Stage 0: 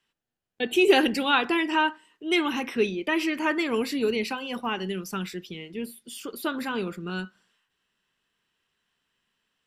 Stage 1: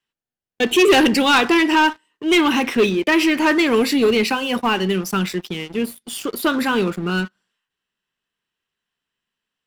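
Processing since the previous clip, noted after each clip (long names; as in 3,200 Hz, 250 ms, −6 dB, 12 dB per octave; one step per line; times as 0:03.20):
leveller curve on the samples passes 3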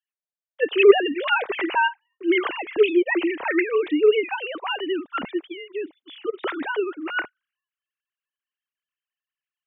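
three sine waves on the formant tracks
level −4.5 dB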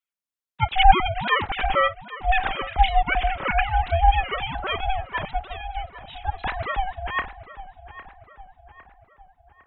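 feedback echo with a low-pass in the loop 806 ms, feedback 53%, low-pass 2,200 Hz, level −14 dB
ring modulation 380 Hz
level +3 dB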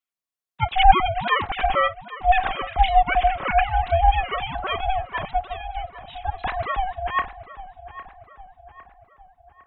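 hollow resonant body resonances 710/1,100 Hz, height 8 dB
level −1 dB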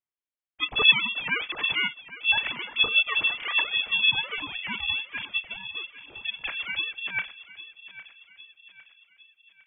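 voice inversion scrambler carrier 3,400 Hz
level −6.5 dB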